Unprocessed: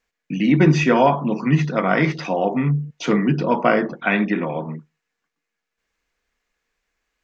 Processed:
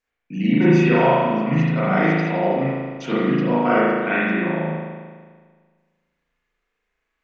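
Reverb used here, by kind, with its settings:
spring reverb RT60 1.6 s, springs 37 ms, chirp 55 ms, DRR −8.5 dB
level −9 dB

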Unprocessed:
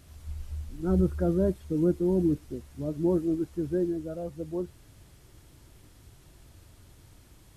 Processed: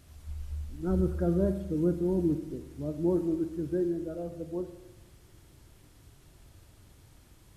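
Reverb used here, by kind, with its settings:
spring reverb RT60 1.1 s, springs 41/46 ms, chirp 50 ms, DRR 8.5 dB
level −2.5 dB

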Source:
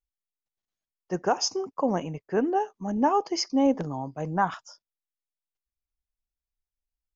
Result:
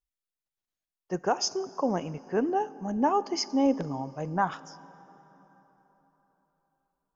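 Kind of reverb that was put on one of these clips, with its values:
dense smooth reverb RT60 4.1 s, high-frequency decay 0.65×, DRR 17.5 dB
level −2 dB

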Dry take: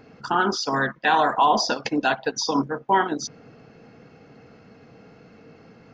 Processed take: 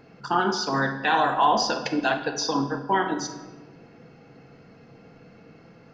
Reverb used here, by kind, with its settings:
rectangular room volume 840 cubic metres, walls mixed, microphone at 0.8 metres
level −2.5 dB

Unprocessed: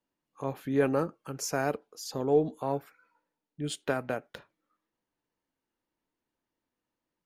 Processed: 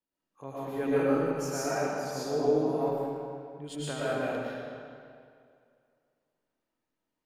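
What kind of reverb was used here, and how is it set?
comb and all-pass reverb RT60 2.3 s, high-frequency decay 0.8×, pre-delay 75 ms, DRR −9.5 dB
level −9 dB

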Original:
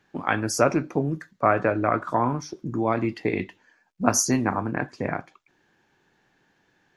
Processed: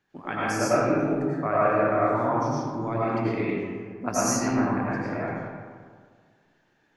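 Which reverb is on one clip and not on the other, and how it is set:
comb and all-pass reverb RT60 1.8 s, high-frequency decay 0.5×, pre-delay 60 ms, DRR −8.5 dB
level −10 dB

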